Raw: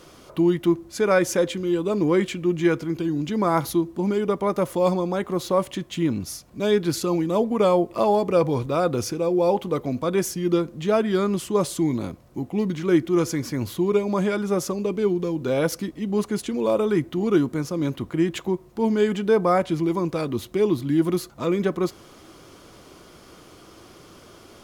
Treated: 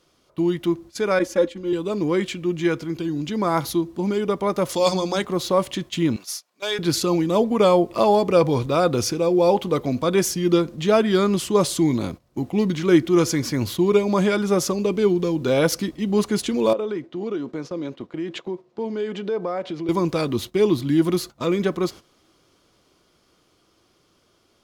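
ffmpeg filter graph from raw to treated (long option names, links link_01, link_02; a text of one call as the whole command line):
ffmpeg -i in.wav -filter_complex "[0:a]asettb=1/sr,asplit=3[link_01][link_02][link_03];[link_01]atrim=end=1.194[link_04];[link_02]atrim=start=1.19:end=1.73,asetpts=PTS-STARTPTS,afade=type=in:duration=0.004:curve=qsin,afade=type=out:start_time=0.536:duration=0.004:curve=qsin,agate=range=-33dB:threshold=-25dB:ratio=3:release=100:detection=peak,highshelf=frequency=2500:gain=-9,aecho=1:1:3.6:0.97,atrim=end_sample=23814[link_05];[link_03]atrim=start=1.726[link_06];[link_04][link_05]acrossfade=duration=0.004:curve1=hsin:curve2=qsin[link_07];[link_07][link_06]acrossfade=duration=0.004:curve1=qsin:curve2=hsin,asettb=1/sr,asplit=3[link_08][link_09][link_10];[link_08]atrim=end=4.694[link_11];[link_09]atrim=start=4.69:end=5.25,asetpts=PTS-STARTPTS,afade=type=in:duration=0.004:curve=qsin,afade=type=out:start_time=0.556:duration=0.004:curve=qsin,equalizer=frequency=5600:width_type=o:width=1.8:gain=12,bandreject=frequency=60:width_type=h:width=6,bandreject=frequency=120:width_type=h:width=6,bandreject=frequency=180:width_type=h:width=6,bandreject=frequency=240:width_type=h:width=6,bandreject=frequency=300:width_type=h:width=6,bandreject=frequency=360:width_type=h:width=6,bandreject=frequency=420:width_type=h:width=6[link_12];[link_10]atrim=start=5.246[link_13];[link_11][link_12]acrossfade=duration=0.004:curve1=hsin:curve2=qsin[link_14];[link_14][link_13]acrossfade=duration=0.004:curve1=qsin:curve2=hsin,asettb=1/sr,asplit=3[link_15][link_16][link_17];[link_15]atrim=end=6.164[link_18];[link_16]atrim=start=6.16:end=6.79,asetpts=PTS-STARTPTS,afade=type=in:duration=0.004:curve=qsin,afade=type=out:start_time=0.626:duration=0.004:curve=qsin,highpass=760,asoftclip=type=hard:threshold=-21dB[link_19];[link_17]atrim=start=6.786[link_20];[link_18][link_19]acrossfade=duration=0.004:curve1=hsin:curve2=qsin[link_21];[link_21][link_20]acrossfade=duration=0.004:curve1=qsin:curve2=hsin,asettb=1/sr,asplit=3[link_22][link_23][link_24];[link_22]atrim=end=16.734[link_25];[link_23]atrim=start=16.73:end=19.89,asetpts=PTS-STARTPTS,afade=type=in:duration=0.004:curve=qsin,afade=type=out:start_time=3.156:duration=0.004:curve=qsin,acompressor=threshold=-32dB:ratio=4:attack=3.2:release=140:knee=1:detection=peak,highpass=180,lowpass=4900,equalizer=frequency=500:width=1.2:gain=5.5[link_26];[link_24]atrim=start=19.886[link_27];[link_25][link_26]acrossfade=duration=0.004:curve1=hsin:curve2=qsin[link_28];[link_28][link_27]acrossfade=duration=0.004:curve1=qsin:curve2=hsin,agate=range=-14dB:threshold=-36dB:ratio=16:detection=peak,equalizer=frequency=4200:width=0.88:gain=5,dynaudnorm=framelen=990:gausssize=9:maxgain=7dB,volume=-2dB" out.wav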